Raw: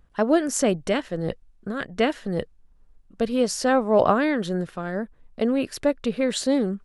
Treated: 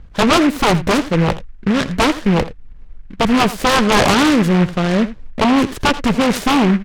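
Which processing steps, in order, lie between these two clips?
bass shelf 240 Hz +8 dB; Chebyshev shaper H 7 -6 dB, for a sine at -3 dBFS; wavefolder -7 dBFS; distance through air 240 m; delay 83 ms -15.5 dB; delay time shaken by noise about 1.6 kHz, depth 0.097 ms; trim +5 dB

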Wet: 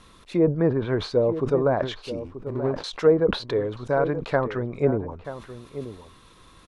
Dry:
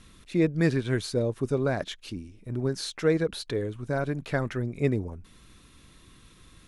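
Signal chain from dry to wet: 2.19–2.84 s: median filter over 41 samples; low-pass that closes with the level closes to 920 Hz, closed at -20 dBFS; graphic EQ 500/1000/4000 Hz +7/+11/+4 dB; echo from a far wall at 160 m, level -12 dB; decay stretcher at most 130 dB/s; trim -1.5 dB

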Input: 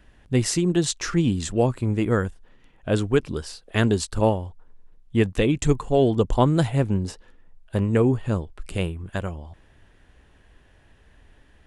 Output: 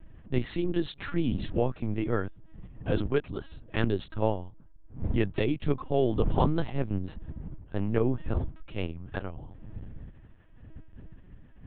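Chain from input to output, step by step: wind noise 100 Hz -31 dBFS; level-controlled noise filter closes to 2.5 kHz, open at -14.5 dBFS; LPC vocoder at 8 kHz pitch kept; trim -6.5 dB

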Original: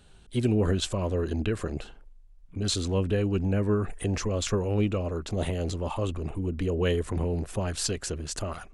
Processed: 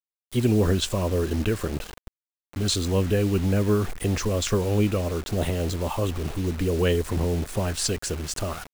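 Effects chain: bit crusher 7-bit; trim +3.5 dB

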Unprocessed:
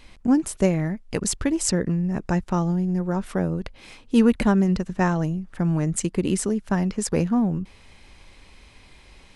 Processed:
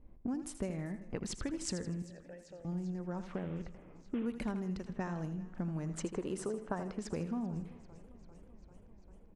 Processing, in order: 3.34–4.26 s: CVSD coder 16 kbps; level-controlled noise filter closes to 410 Hz, open at -18 dBFS; 5.89–6.94 s: high-order bell 770 Hz +10 dB 2.3 oct; compression 6:1, threshold -28 dBFS, peak gain reduction 14.5 dB; 2.02–2.65 s: vowel filter e; feedback delay 80 ms, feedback 41%, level -11 dB; modulated delay 393 ms, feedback 75%, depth 99 cents, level -22 dB; trim -7 dB

